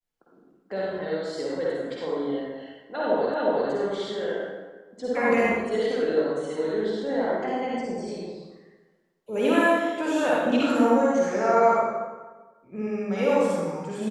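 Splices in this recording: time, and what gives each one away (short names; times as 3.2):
3.34 repeat of the last 0.36 s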